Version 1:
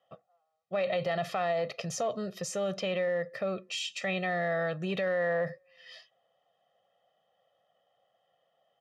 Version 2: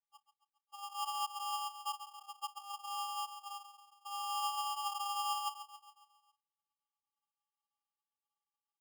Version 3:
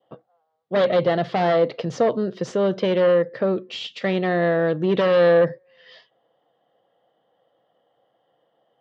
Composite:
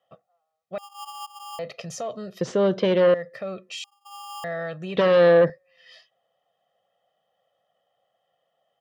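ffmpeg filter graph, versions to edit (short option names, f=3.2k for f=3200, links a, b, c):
-filter_complex "[1:a]asplit=2[a][b];[2:a]asplit=2[c][d];[0:a]asplit=5[e][f][g][h][i];[e]atrim=end=0.782[j];[a]atrim=start=0.778:end=1.592[k];[f]atrim=start=1.588:end=2.412[l];[c]atrim=start=2.408:end=3.142[m];[g]atrim=start=3.138:end=3.842[n];[b]atrim=start=3.838:end=4.442[o];[h]atrim=start=4.438:end=4.972[p];[d]atrim=start=4.968:end=5.502[q];[i]atrim=start=5.498[r];[j][k]acrossfade=d=0.004:c1=hsin:c2=hsin[s];[s][l]acrossfade=d=0.004:c1=hsin:c2=hsin[t];[t][m]acrossfade=d=0.004:c1=hsin:c2=hsin[u];[u][n]acrossfade=d=0.004:c1=hsin:c2=hsin[v];[v][o]acrossfade=d=0.004:c1=hsin:c2=hsin[w];[w][p]acrossfade=d=0.004:c1=hsin:c2=hsin[x];[x][q]acrossfade=d=0.004:c1=hsin:c2=hsin[y];[y][r]acrossfade=d=0.004:c1=hsin:c2=hsin"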